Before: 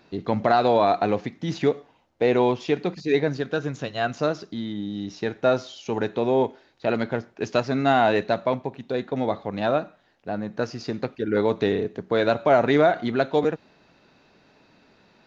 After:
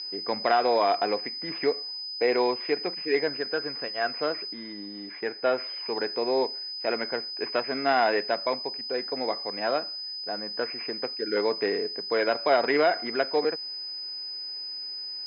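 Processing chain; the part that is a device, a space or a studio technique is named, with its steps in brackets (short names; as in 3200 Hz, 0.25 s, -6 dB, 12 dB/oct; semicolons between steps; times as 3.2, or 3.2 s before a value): toy sound module (decimation joined by straight lines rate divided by 6×; pulse-width modulation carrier 5000 Hz; speaker cabinet 540–4100 Hz, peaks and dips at 610 Hz -6 dB, 860 Hz -6 dB, 1300 Hz -5 dB, 2200 Hz +6 dB, 3400 Hz -4 dB); 4.53–5.58 LPF 4300 Hz 24 dB/oct; gain +3 dB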